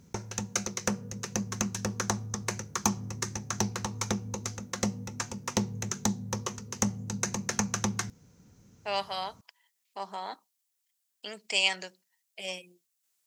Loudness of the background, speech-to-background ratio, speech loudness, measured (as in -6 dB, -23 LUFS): -32.5 LUFS, -0.5 dB, -33.0 LUFS